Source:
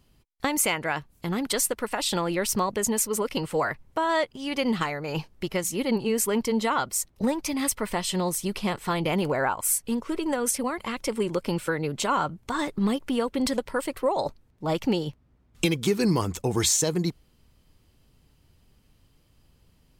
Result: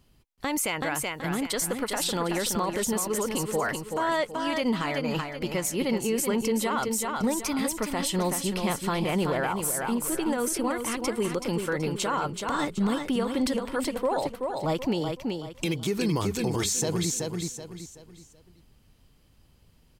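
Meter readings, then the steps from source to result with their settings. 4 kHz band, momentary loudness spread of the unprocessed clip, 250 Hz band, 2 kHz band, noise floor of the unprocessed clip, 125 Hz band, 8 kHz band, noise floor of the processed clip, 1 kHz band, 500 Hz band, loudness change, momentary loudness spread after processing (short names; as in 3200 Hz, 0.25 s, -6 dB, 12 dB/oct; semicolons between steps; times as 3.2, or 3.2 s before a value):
-1.0 dB, 6 LU, -0.5 dB, -1.0 dB, -63 dBFS, -1.0 dB, -2.0 dB, -60 dBFS, -1.0 dB, -1.0 dB, -1.0 dB, 4 LU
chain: on a send: feedback echo 0.378 s, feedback 35%, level -6.5 dB; on the sum: limiter -18 dBFS, peak gain reduction 8 dB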